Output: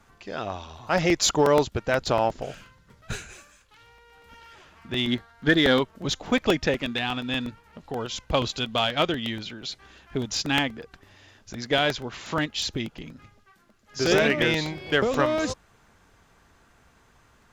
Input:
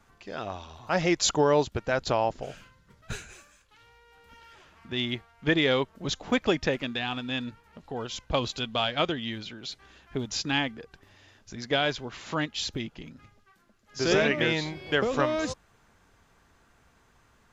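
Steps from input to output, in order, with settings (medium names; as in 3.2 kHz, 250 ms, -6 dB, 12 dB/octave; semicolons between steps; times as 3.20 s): 5.07–5.80 s: graphic EQ with 31 bands 250 Hz +7 dB, 1.6 kHz +7 dB, 2.5 kHz -8 dB, 4 kHz +6 dB; in parallel at -6 dB: one-sided clip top -26.5 dBFS; on the sum: crackling interface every 0.12 s, samples 64, repeat, from 0.98 s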